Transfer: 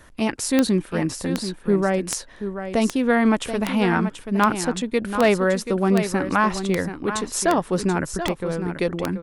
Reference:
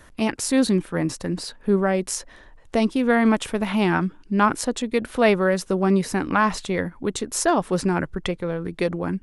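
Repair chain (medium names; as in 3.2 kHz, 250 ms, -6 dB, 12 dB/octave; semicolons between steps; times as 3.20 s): clip repair -7.5 dBFS; de-click; inverse comb 732 ms -9.5 dB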